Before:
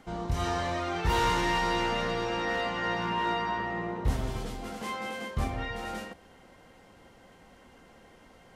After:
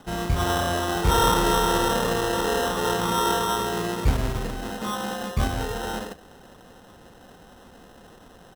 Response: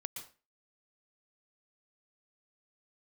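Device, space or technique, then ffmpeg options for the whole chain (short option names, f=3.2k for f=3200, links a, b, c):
crushed at another speed: -af "asetrate=35280,aresample=44100,acrusher=samples=24:mix=1:aa=0.000001,asetrate=55125,aresample=44100,volume=6.5dB"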